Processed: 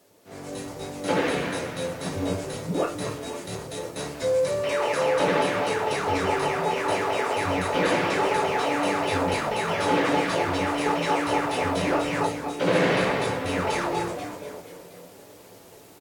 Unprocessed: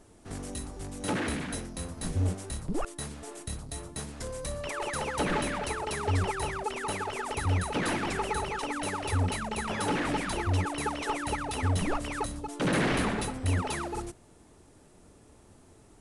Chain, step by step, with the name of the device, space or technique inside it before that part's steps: frequency-shifting echo 242 ms, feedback 55%, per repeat -130 Hz, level -8.5 dB; filmed off a television (band-pass 180–6500 Hz; peaking EQ 520 Hz +8 dB 0.48 oct; reverberation RT60 0.35 s, pre-delay 8 ms, DRR -3.5 dB; white noise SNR 30 dB; level rider gain up to 9.5 dB; trim -7.5 dB; AAC 64 kbps 48 kHz)

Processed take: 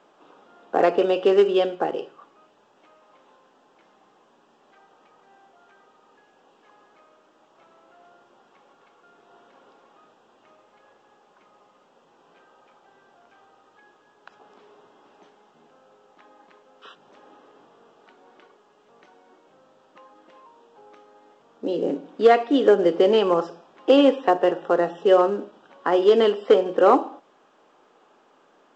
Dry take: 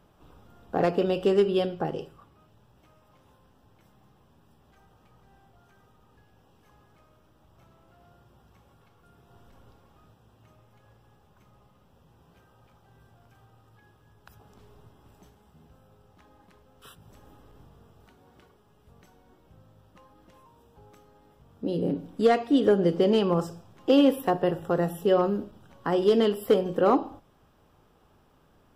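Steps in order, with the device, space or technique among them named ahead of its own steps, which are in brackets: high-pass 230 Hz 12 dB/octave; telephone (band-pass 310–3400 Hz; trim +7 dB; A-law 128 kbps 16 kHz)

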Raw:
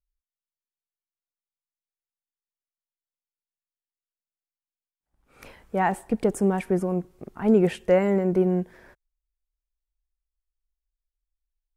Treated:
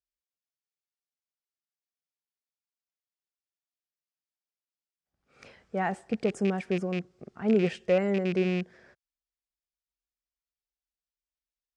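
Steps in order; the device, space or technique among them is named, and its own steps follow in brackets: car door speaker with a rattle (rattle on loud lows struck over -24 dBFS, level -23 dBFS; cabinet simulation 95–7400 Hz, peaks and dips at 300 Hz -5 dB, 950 Hz -8 dB, 5 kHz +4 dB); trim -4 dB

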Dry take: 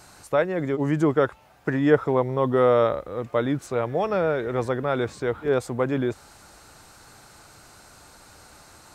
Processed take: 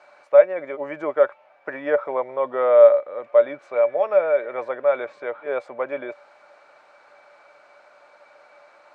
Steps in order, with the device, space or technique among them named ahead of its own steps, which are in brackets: tin-can telephone (band-pass 650–2100 Hz; small resonant body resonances 580/2300 Hz, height 18 dB, ringing for 95 ms)

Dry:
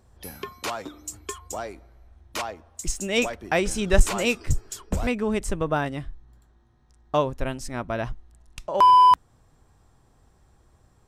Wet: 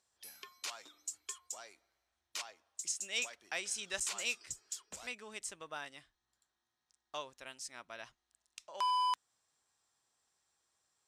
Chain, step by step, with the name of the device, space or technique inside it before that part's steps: piezo pickup straight into a mixer (low-pass 6.7 kHz 12 dB/octave; differentiator); trim -1.5 dB

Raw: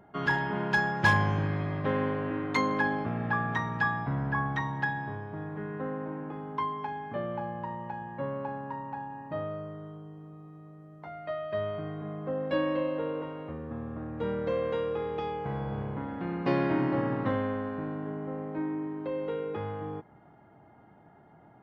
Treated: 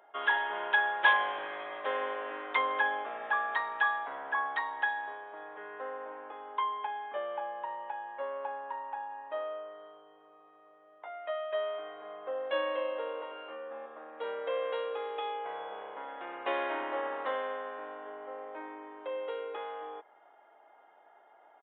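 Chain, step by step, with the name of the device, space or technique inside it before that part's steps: 13.29–13.86 s: flutter echo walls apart 3.8 m, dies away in 0.33 s; musical greeting card (resampled via 8 kHz; high-pass 510 Hz 24 dB/octave; peaking EQ 3.3 kHz +5 dB 0.38 oct)

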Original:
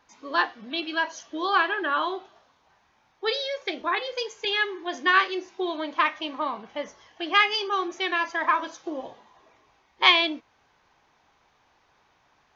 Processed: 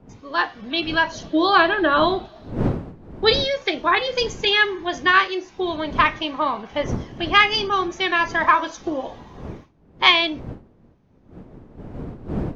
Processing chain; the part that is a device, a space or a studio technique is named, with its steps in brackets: gate with hold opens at -51 dBFS; 1.12–3.33 s: graphic EQ with 31 bands 315 Hz +9 dB, 630 Hz +10 dB, 4 kHz +8 dB, 6.3 kHz -6 dB; smartphone video outdoors (wind noise 280 Hz -41 dBFS; level rider gain up to 10 dB; trim -1 dB; AAC 96 kbps 48 kHz)

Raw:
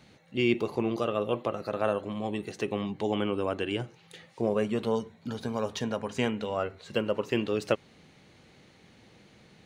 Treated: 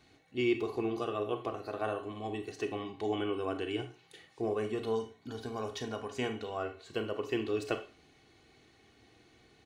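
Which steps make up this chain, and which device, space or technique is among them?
microphone above a desk (comb 2.7 ms, depth 65%; reverberation RT60 0.35 s, pre-delay 28 ms, DRR 8 dB); trim -7 dB

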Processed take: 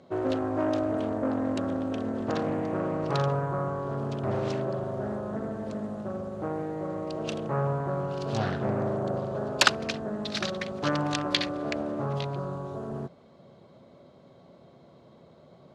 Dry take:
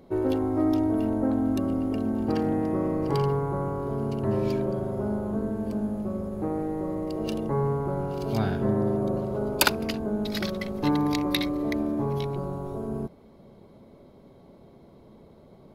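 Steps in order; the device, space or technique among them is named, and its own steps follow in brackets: full-range speaker at full volume (loudspeaker Doppler distortion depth 0.56 ms; cabinet simulation 150–7700 Hz, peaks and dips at 210 Hz -8 dB, 300 Hz -8 dB, 420 Hz -8 dB, 880 Hz -6 dB, 2.2 kHz -4 dB, 5.3 kHz -3 dB); trim +3.5 dB

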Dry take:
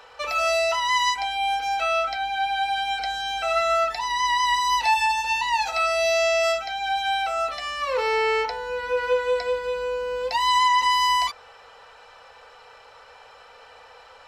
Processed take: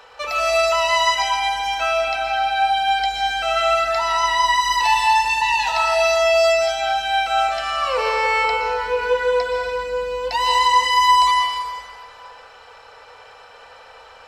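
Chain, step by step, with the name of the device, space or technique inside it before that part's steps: stairwell (reverberation RT60 2.0 s, pre-delay 116 ms, DRR 1.5 dB); trim +2 dB

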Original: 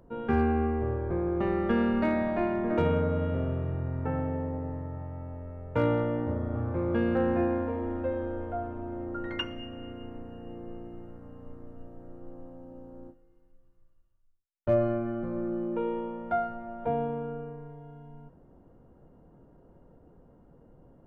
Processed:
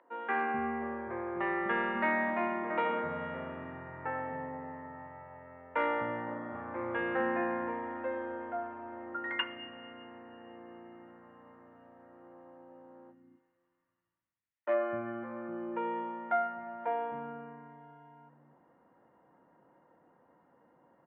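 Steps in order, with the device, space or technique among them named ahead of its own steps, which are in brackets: 2.30–2.98 s: band-stop 1.7 kHz, Q 7.2; phone earpiece (cabinet simulation 350–3100 Hz, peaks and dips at 420 Hz -9 dB, 630 Hz -4 dB, 980 Hz +5 dB, 1.9 kHz +10 dB); bands offset in time highs, lows 250 ms, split 290 Hz

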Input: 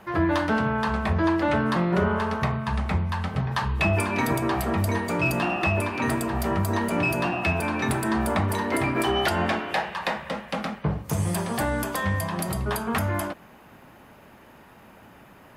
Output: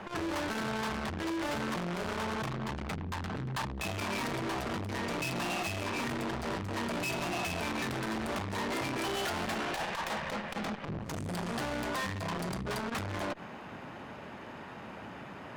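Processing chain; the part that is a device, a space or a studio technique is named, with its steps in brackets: valve radio (band-pass 84–5600 Hz; valve stage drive 39 dB, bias 0.5; transformer saturation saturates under 230 Hz); trim +7.5 dB

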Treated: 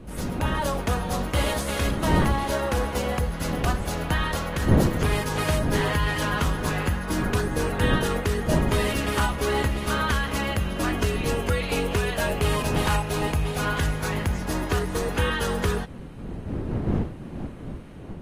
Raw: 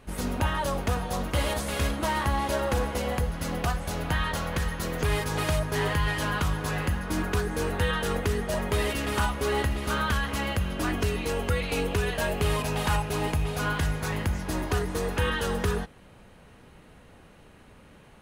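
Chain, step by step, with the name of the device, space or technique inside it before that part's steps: smartphone video outdoors (wind noise; level rider gain up to 4.5 dB; trim -2.5 dB; AAC 48 kbps 32 kHz)

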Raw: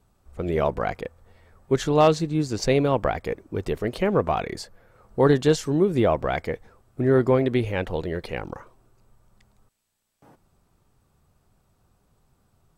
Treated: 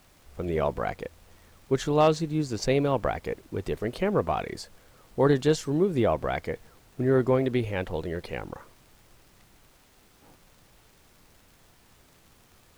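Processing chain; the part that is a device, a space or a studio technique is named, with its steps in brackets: vinyl LP (crackle; pink noise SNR 30 dB); trim -3.5 dB

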